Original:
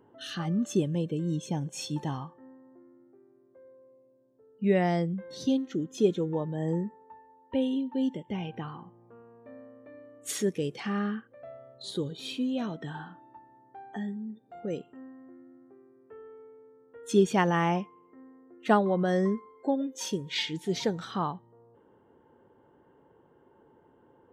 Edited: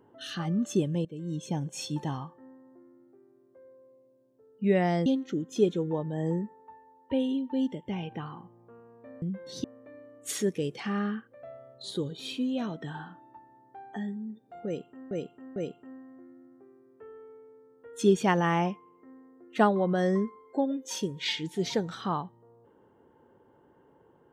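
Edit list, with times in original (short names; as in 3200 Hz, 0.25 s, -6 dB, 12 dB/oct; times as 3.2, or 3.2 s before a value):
1.05–1.52 fade in, from -15 dB
5.06–5.48 move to 9.64
14.66–15.11 loop, 3 plays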